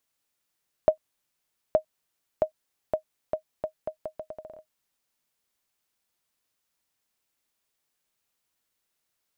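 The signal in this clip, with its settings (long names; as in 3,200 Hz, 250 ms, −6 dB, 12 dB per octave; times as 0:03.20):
bouncing ball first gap 0.87 s, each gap 0.77, 625 Hz, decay 97 ms −8 dBFS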